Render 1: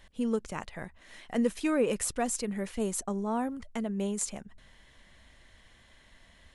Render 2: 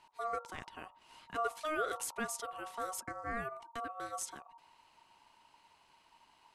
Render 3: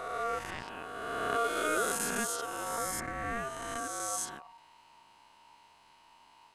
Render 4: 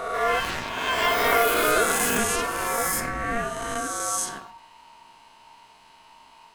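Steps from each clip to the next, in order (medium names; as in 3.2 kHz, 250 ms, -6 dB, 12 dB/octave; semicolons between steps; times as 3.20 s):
hum notches 50/100/150/200/250/300/350/400/450 Hz; ring modulator 930 Hz; trim -5 dB
reverse spectral sustain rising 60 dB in 2.19 s; trim +1 dB
on a send at -6.5 dB: reverberation, pre-delay 4 ms; on the sum: ever faster or slower copies 141 ms, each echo +7 st, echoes 2; trim +7.5 dB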